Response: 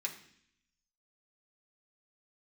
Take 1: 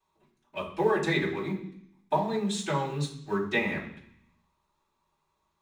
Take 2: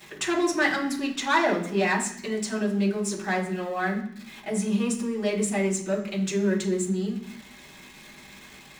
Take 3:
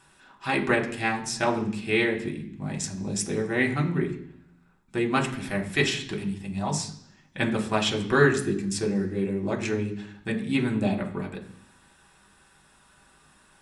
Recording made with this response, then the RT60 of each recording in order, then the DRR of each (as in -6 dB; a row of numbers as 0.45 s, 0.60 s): 3; 0.65 s, 0.65 s, 0.65 s; -13.0 dB, -5.5 dB, -0.5 dB